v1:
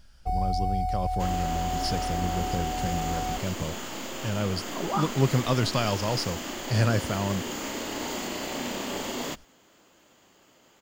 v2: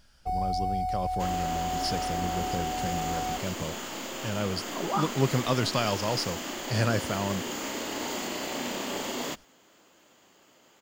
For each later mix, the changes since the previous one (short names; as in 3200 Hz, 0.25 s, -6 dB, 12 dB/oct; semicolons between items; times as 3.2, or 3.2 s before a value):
master: add low shelf 110 Hz -9 dB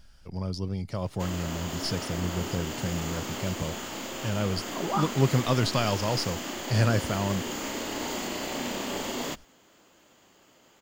first sound: muted; master: add low shelf 110 Hz +9 dB